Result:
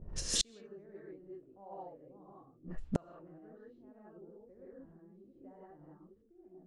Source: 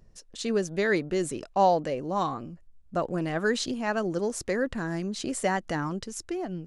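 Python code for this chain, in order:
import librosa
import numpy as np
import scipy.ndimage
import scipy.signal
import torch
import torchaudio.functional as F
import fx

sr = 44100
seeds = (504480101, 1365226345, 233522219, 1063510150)

y = fx.rev_gated(x, sr, seeds[0], gate_ms=200, shape='rising', drr_db=-7.5)
y = fx.gate_flip(y, sr, shuts_db=-23.0, range_db=-40)
y = fx.env_lowpass(y, sr, base_hz=400.0, full_db=-39.5)
y = y * 10.0 ** (8.0 / 20.0)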